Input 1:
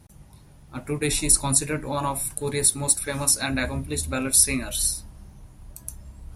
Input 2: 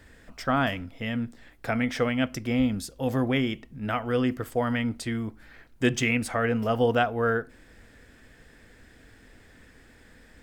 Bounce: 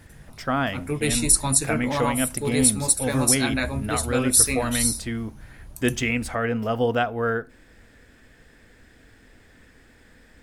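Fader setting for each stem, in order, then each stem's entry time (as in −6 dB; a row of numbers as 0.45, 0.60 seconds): +0.5, +0.5 decibels; 0.00, 0.00 seconds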